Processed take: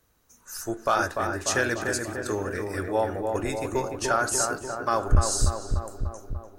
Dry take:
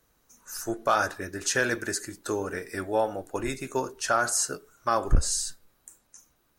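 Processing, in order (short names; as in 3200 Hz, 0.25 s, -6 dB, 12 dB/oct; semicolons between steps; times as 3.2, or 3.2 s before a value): bell 82 Hz +7.5 dB 0.59 oct; darkening echo 0.295 s, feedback 69%, low-pass 1600 Hz, level -4 dB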